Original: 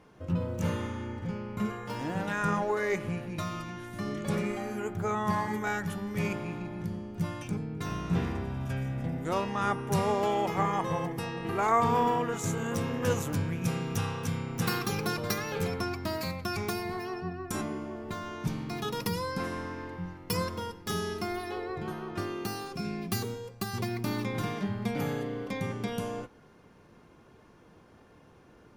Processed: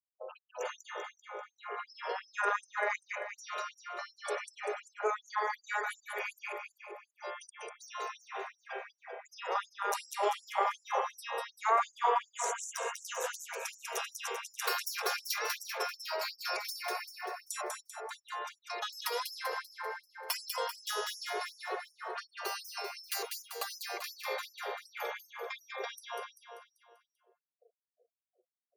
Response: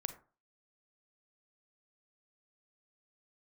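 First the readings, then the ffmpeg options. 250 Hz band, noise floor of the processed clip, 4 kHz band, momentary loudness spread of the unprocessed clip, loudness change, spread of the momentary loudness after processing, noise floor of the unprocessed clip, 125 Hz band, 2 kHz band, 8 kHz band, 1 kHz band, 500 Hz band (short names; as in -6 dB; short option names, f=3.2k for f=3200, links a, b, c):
under -25 dB, under -85 dBFS, +0.5 dB, 8 LU, -4.5 dB, 12 LU, -57 dBFS, under -40 dB, -0.5 dB, +0.5 dB, -2.5 dB, -6.0 dB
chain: -filter_complex "[0:a]highpass=210,afftfilt=real='re*gte(hypot(re,im),0.00794)':imag='im*gte(hypot(re,im),0.00794)':win_size=1024:overlap=0.75,asplit=2[a][b];[b]acompressor=threshold=-41dB:ratio=4,volume=2dB[c];[a][c]amix=inputs=2:normalize=0,tremolo=f=230:d=0.621,aecho=1:1:195|390|585|780|975|1170:0.631|0.309|0.151|0.0742|0.0364|0.0178,afftfilt=real='re*gte(b*sr/1024,370*pow(5100/370,0.5+0.5*sin(2*PI*2.7*pts/sr)))':imag='im*gte(b*sr/1024,370*pow(5100/370,0.5+0.5*sin(2*PI*2.7*pts/sr)))':win_size=1024:overlap=0.75"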